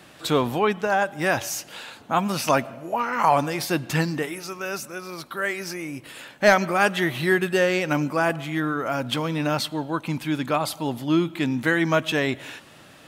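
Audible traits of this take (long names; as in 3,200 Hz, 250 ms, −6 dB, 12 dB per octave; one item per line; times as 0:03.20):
background noise floor −49 dBFS
spectral slope −4.5 dB per octave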